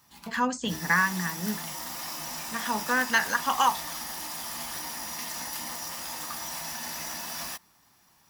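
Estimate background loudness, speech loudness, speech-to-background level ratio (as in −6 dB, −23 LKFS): −34.0 LKFS, −27.0 LKFS, 7.0 dB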